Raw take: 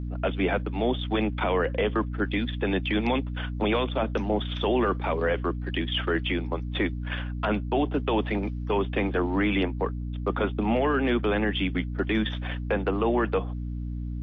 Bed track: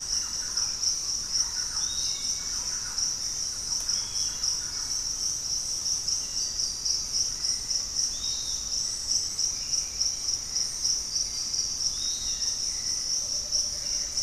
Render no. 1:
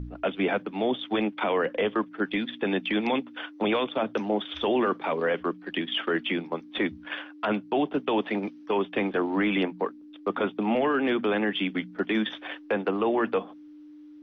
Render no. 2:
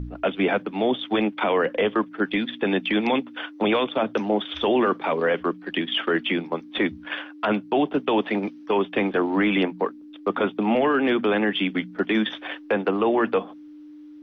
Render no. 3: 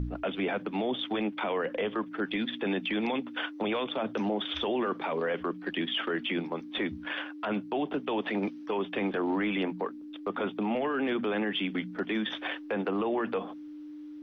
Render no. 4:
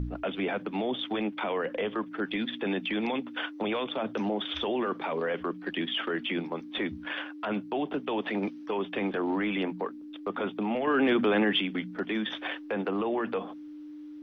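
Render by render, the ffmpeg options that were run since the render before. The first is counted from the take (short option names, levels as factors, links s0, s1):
-af "bandreject=f=60:t=h:w=4,bandreject=f=120:t=h:w=4,bandreject=f=180:t=h:w=4,bandreject=f=240:t=h:w=4"
-af "volume=1.58"
-af "alimiter=limit=0.075:level=0:latency=1:release=69"
-filter_complex "[0:a]asettb=1/sr,asplit=3[s0][s1][s2];[s0]atrim=end=10.874[s3];[s1]atrim=start=10.87:end=11.61,asetpts=PTS-STARTPTS,afade=t=in:d=0.004:c=qsin,afade=t=out:st=0.736:d=0.004:c=qsin,acontrast=38[s4];[s2]atrim=start=11.606[s5];[s3][s4]acrossfade=d=0.004:c1=hsin:c2=qsin[s6];[s6][s5]acrossfade=d=0.004:c1=qsin:c2=hsin"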